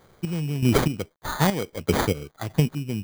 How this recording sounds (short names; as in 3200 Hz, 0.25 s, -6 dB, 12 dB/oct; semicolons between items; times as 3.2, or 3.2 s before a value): a quantiser's noise floor 10-bit, dither none; chopped level 1.6 Hz, depth 65%, duty 40%; aliases and images of a low sample rate 2700 Hz, jitter 0%